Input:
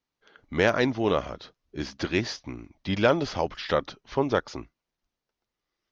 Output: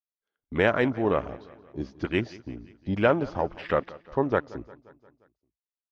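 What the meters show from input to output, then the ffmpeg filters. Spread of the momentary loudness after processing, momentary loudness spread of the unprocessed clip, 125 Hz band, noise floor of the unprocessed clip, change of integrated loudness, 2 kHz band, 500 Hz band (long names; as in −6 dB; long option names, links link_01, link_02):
18 LU, 18 LU, 0.0 dB, below −85 dBFS, 0.0 dB, −0.5 dB, 0.0 dB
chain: -filter_complex "[0:a]afwtdn=0.0178,agate=range=-14dB:threshold=-53dB:ratio=16:detection=peak,asplit=2[link_01][link_02];[link_02]aecho=0:1:176|352|528|704|880:0.0944|0.0548|0.0318|0.0184|0.0107[link_03];[link_01][link_03]amix=inputs=2:normalize=0"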